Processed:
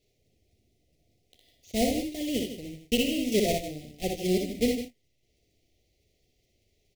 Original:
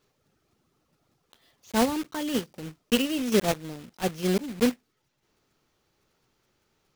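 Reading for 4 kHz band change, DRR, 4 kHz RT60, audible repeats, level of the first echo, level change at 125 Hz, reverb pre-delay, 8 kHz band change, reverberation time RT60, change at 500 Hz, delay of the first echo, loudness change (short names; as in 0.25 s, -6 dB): -0.5 dB, none, none, 3, -4.0 dB, -2.0 dB, none, -0.5 dB, none, -0.5 dB, 60 ms, -1.5 dB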